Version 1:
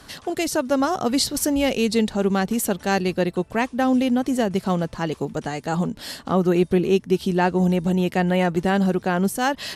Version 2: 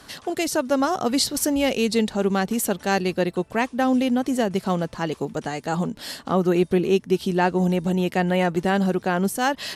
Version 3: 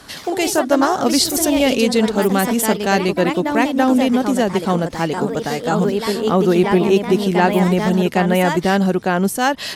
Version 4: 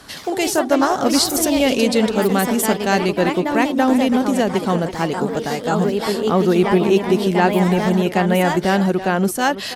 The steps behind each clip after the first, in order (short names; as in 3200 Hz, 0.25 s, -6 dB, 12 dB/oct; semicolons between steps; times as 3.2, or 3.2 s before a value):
low shelf 120 Hz -6.5 dB
echoes that change speed 81 ms, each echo +2 st, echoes 2, each echo -6 dB; gain +5 dB
speakerphone echo 0.33 s, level -10 dB; gain -1 dB